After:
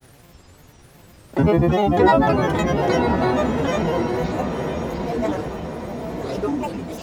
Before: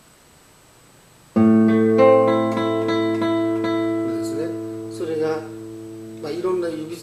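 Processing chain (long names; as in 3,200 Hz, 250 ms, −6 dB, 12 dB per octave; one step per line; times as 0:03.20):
low shelf with overshoot 120 Hz +9 dB, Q 1.5
hum with harmonics 100 Hz, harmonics 6, −52 dBFS
granular cloud, spray 23 ms, pitch spread up and down by 12 semitones
feedback delay with all-pass diffusion 1,018 ms, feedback 51%, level −6.5 dB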